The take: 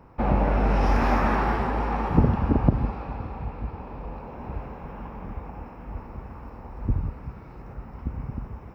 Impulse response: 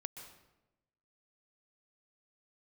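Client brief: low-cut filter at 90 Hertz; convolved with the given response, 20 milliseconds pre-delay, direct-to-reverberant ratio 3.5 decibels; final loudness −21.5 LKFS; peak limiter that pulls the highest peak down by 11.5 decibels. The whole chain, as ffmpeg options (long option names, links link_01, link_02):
-filter_complex "[0:a]highpass=90,alimiter=limit=-17.5dB:level=0:latency=1,asplit=2[link_01][link_02];[1:a]atrim=start_sample=2205,adelay=20[link_03];[link_02][link_03]afir=irnorm=-1:irlink=0,volume=-0.5dB[link_04];[link_01][link_04]amix=inputs=2:normalize=0,volume=7.5dB"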